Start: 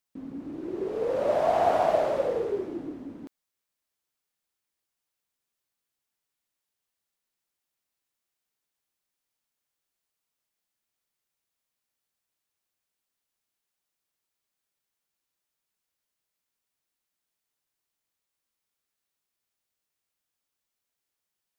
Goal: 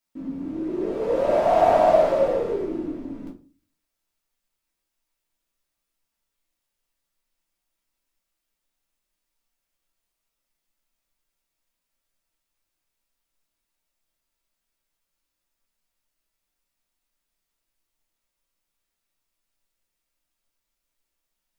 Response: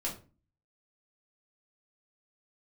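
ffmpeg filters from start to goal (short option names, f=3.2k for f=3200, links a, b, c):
-filter_complex "[0:a]asubboost=boost=4:cutoff=59[a];[1:a]atrim=start_sample=2205[b];[a][b]afir=irnorm=-1:irlink=0,volume=1.5dB"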